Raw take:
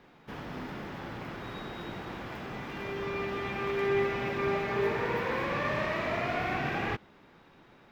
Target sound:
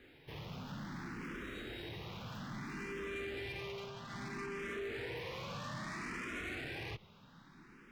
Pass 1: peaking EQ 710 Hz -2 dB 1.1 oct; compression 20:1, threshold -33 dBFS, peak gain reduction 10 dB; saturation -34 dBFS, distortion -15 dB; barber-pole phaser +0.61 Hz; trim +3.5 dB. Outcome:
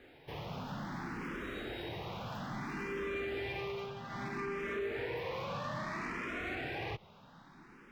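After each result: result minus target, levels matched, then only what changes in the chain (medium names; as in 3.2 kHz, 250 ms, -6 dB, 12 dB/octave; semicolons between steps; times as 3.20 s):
saturation: distortion -7 dB; 1 kHz band +2.5 dB
change: saturation -41 dBFS, distortion -9 dB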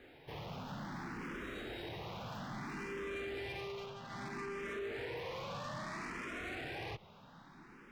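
1 kHz band +2.5 dB
change: peaking EQ 710 Hz -11.5 dB 1.1 oct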